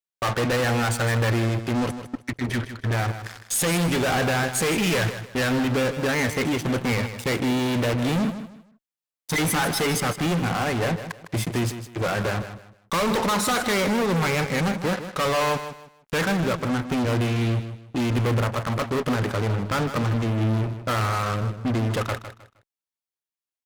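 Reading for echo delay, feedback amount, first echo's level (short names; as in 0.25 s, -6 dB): 0.156 s, 27%, -11.0 dB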